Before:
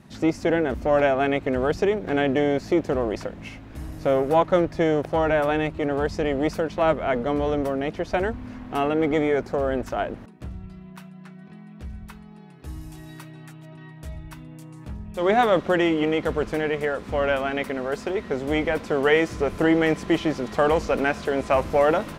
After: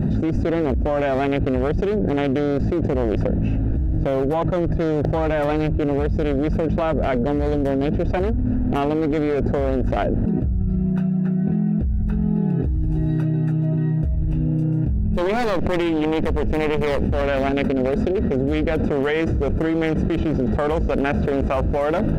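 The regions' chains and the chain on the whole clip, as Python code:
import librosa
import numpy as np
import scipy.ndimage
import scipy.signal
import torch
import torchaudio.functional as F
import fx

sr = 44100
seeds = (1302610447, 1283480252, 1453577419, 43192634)

y = fx.chain(x, sr, fx.lower_of_two(delay_ms=0.37),
    fx.env_flatten(amount_pct=50), at=(14.17, 17.22))
y = fx.wiener(y, sr, points=41)
y = fx.low_shelf(y, sr, hz=120.0, db=8.5)
y = fx.env_flatten(y, sr, amount_pct=100)
y = y * librosa.db_to_amplitude(-5.0)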